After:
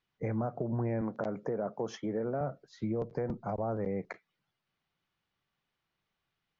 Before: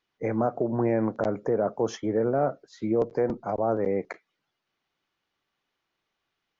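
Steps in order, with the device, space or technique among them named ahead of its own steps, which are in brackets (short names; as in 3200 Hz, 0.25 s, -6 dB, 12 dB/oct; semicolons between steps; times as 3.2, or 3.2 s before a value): 1.01–2.41 HPF 180 Hz 12 dB/oct; jukebox (LPF 6100 Hz 12 dB/oct; resonant low shelf 220 Hz +6.5 dB, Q 1.5; compressor 3:1, threshold -27 dBFS, peak gain reduction 6.5 dB); gain -4 dB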